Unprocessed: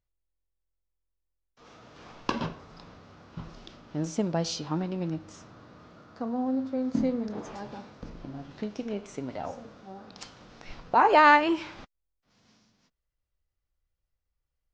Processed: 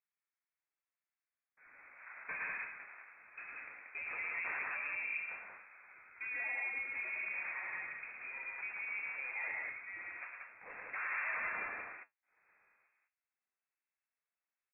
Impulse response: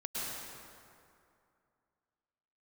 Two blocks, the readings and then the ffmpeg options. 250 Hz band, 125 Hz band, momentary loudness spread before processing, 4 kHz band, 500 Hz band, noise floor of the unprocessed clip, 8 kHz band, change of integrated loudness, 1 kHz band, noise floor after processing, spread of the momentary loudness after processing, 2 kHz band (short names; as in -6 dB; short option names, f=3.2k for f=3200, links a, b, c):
under -35 dB, under -30 dB, 25 LU, under -40 dB, -25.5 dB, -83 dBFS, n/a, -12.5 dB, -21.5 dB, under -85 dBFS, 16 LU, -4.0 dB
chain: -filter_complex "[0:a]agate=range=-8dB:threshold=-48dB:ratio=16:detection=peak,afftfilt=real='re*lt(hypot(re,im),0.355)':imag='im*lt(hypot(re,im),0.355)':win_size=1024:overlap=0.75,highpass=f=170:p=1,acrusher=samples=14:mix=1:aa=0.000001:lfo=1:lforange=8.4:lforate=1.1,asoftclip=type=tanh:threshold=-31dB,asplit=2[a][b];[b]highpass=f=720:p=1,volume=14dB,asoftclip=type=tanh:threshold=-31dB[c];[a][c]amix=inputs=2:normalize=0,lowpass=f=1.6k:p=1,volume=-6dB,flanger=delay=8.5:depth=8.1:regen=-65:speed=0.58:shape=triangular,aecho=1:1:110.8|183.7:0.631|0.708,lowpass=f=2.3k:t=q:w=0.5098,lowpass=f=2.3k:t=q:w=0.6013,lowpass=f=2.3k:t=q:w=0.9,lowpass=f=2.3k:t=q:w=2.563,afreqshift=-2700"